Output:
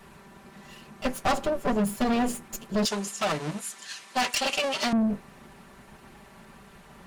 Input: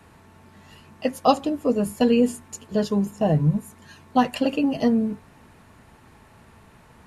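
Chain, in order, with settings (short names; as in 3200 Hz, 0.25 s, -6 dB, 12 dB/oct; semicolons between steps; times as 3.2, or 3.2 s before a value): minimum comb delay 5.1 ms; 2.85–4.93 weighting filter ITU-R 468; soft clip -23 dBFS, distortion -8 dB; gain +3 dB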